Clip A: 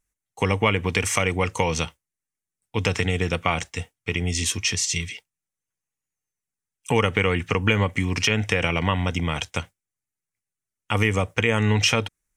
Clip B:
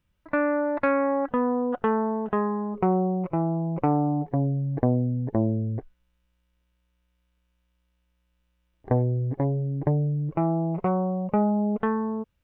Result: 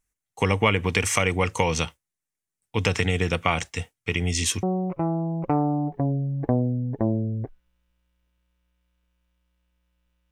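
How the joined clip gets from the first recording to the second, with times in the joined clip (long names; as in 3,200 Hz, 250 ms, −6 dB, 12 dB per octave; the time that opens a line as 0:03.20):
clip A
0:04.63: continue with clip B from 0:02.97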